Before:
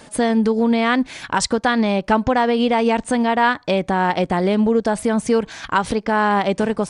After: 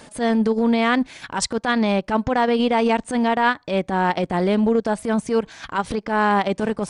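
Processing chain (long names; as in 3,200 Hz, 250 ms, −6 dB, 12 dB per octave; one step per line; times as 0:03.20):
reversed playback
upward compression, threshold −25 dBFS
reversed playback
transient designer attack −11 dB, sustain −7 dB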